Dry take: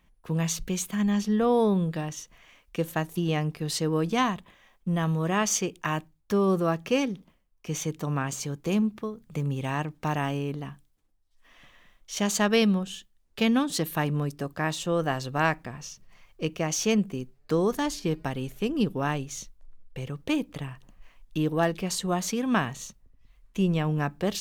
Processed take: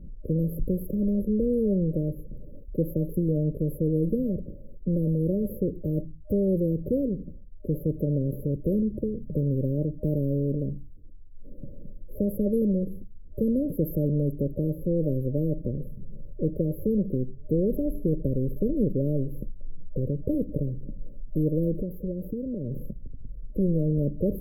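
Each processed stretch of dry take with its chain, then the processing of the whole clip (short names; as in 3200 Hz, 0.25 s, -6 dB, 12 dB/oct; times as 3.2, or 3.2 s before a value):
21.75–22.78 compressor, threshold -36 dBFS + decimation joined by straight lines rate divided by 2×
whole clip: FFT band-reject 610–11000 Hz; tilt -4 dB/oct; spectral compressor 2:1; gain -6.5 dB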